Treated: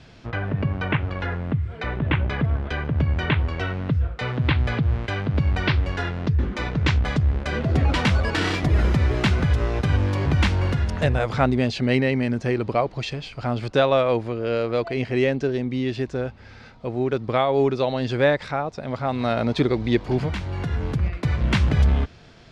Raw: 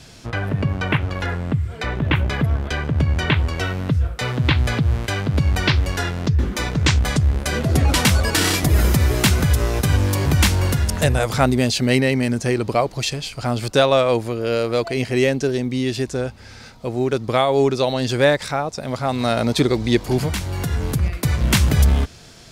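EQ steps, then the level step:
low-pass filter 3,100 Hz 12 dB per octave
−3.0 dB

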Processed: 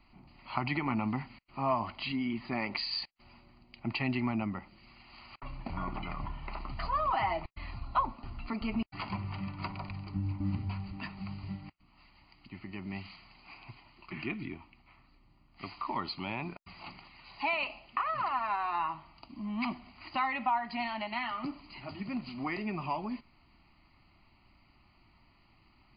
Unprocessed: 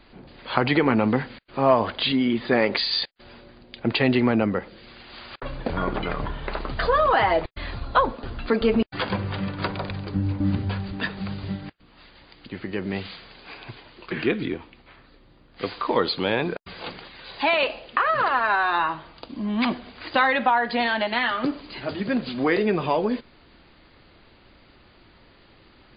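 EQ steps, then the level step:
phaser with its sweep stopped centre 2,400 Hz, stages 8
−8.0 dB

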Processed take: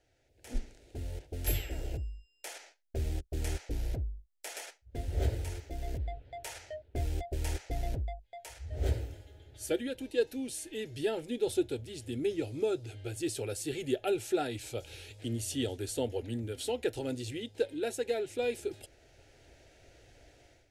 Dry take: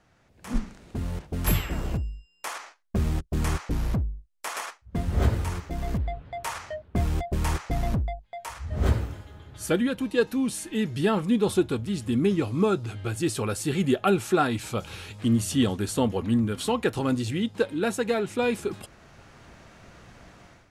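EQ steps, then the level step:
phaser with its sweep stopped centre 460 Hz, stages 4
−5.5 dB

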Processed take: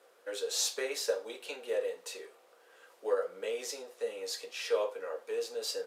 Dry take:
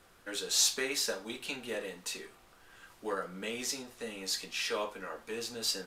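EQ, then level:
high-pass with resonance 490 Hz, resonance Q 4.9
−5.0 dB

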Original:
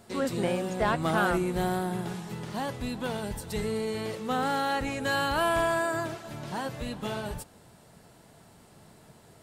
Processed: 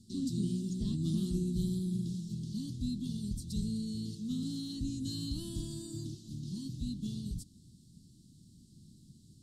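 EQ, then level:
inverse Chebyshev band-stop filter 490–2,400 Hz, stop band 40 dB
high-frequency loss of the air 55 metres
0.0 dB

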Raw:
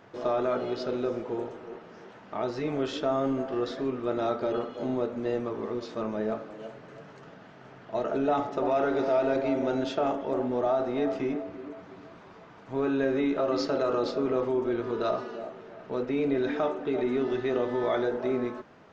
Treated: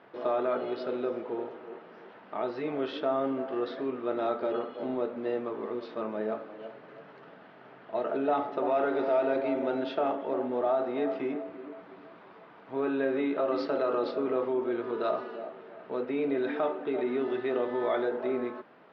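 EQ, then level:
Bessel high-pass filter 280 Hz, order 2
low-pass filter 4,600 Hz 24 dB per octave
high-frequency loss of the air 140 metres
0.0 dB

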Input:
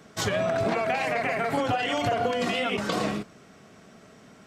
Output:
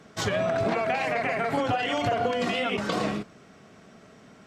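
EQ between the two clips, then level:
high-shelf EQ 9,200 Hz −9 dB
0.0 dB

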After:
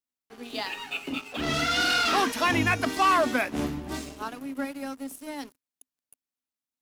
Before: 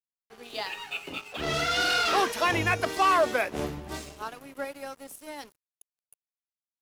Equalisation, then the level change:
parametric band 260 Hz +14.5 dB 0.35 octaves
dynamic equaliser 470 Hz, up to −6 dB, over −38 dBFS, Q 1.4
+1.5 dB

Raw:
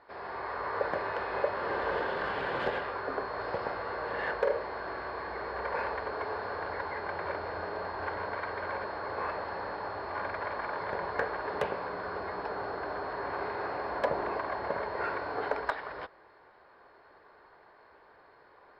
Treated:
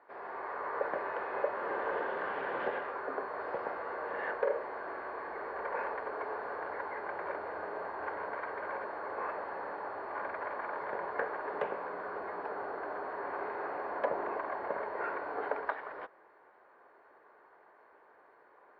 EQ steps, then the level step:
three-way crossover with the lows and the highs turned down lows −16 dB, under 210 Hz, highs −22 dB, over 2,700 Hz
−2.5 dB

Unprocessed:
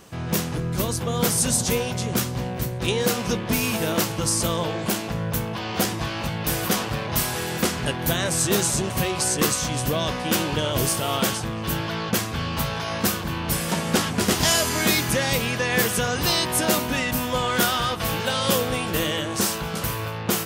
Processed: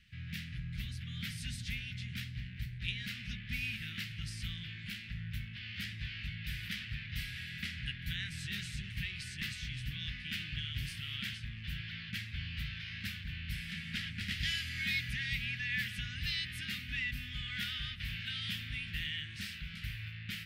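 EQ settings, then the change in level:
elliptic band-stop filter 270–1,900 Hz, stop band 60 dB
high-frequency loss of the air 420 metres
guitar amp tone stack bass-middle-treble 10-0-10
+1.0 dB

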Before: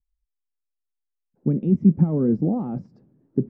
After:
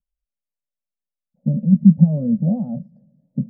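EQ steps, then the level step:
drawn EQ curve 110 Hz 0 dB, 160 Hz +13 dB, 230 Hz +11 dB, 370 Hz −25 dB, 560 Hz +14 dB, 1,200 Hz −18 dB, 1,800 Hz −10 dB, 2,900 Hz −16 dB
−6.5 dB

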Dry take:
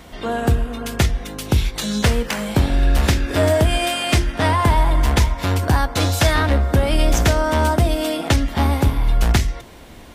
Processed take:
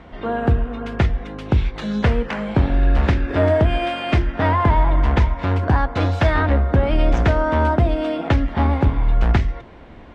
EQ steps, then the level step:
low-pass filter 2,100 Hz 12 dB per octave
0.0 dB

